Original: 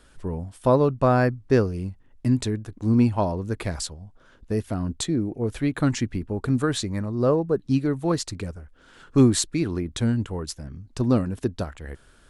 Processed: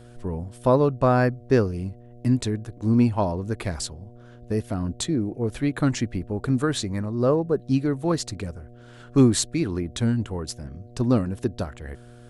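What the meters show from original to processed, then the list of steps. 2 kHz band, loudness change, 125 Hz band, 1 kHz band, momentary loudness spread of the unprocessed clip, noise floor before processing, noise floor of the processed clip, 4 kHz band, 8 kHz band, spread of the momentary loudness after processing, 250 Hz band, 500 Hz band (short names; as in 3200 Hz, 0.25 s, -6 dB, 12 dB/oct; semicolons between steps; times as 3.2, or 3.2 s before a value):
0.0 dB, 0.0 dB, 0.0 dB, 0.0 dB, 13 LU, -55 dBFS, -47 dBFS, 0.0 dB, 0.0 dB, 13 LU, 0.0 dB, 0.0 dB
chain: buzz 120 Hz, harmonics 6, -47 dBFS -5 dB/oct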